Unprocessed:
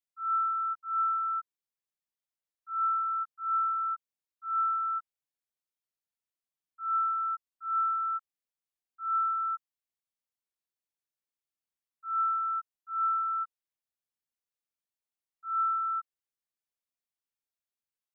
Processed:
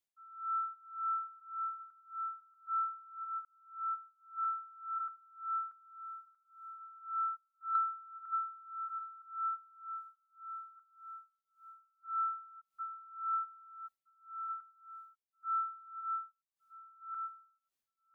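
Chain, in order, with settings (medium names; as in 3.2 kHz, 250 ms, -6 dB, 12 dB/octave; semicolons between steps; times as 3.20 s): backward echo that repeats 635 ms, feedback 52%, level -9.5 dB; 3.45–4.48 s: fade in; 7.75–9.22 s: peaking EQ 1.2 kHz +11 dB 3 oct; compression 6:1, threshold -35 dBFS, peak gain reduction 18 dB; logarithmic tremolo 1.8 Hz, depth 23 dB; trim +3.5 dB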